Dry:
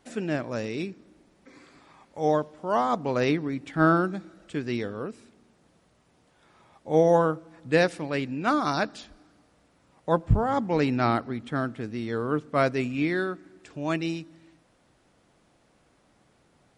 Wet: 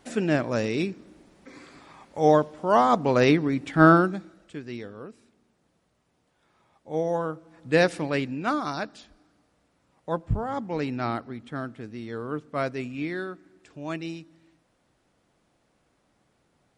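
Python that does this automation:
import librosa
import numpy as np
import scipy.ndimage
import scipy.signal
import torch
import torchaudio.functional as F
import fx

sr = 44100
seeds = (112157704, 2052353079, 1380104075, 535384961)

y = fx.gain(x, sr, db=fx.line((3.93, 5.0), (4.6, -7.0), (7.19, -7.0), (8.0, 4.0), (8.75, -5.0)))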